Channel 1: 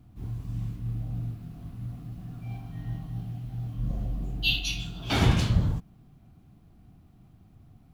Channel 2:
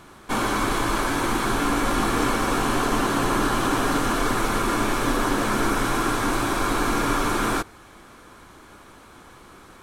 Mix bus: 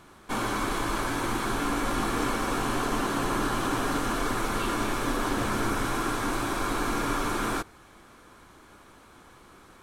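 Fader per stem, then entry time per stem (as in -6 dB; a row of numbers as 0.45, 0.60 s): -16.5, -5.5 dB; 0.15, 0.00 s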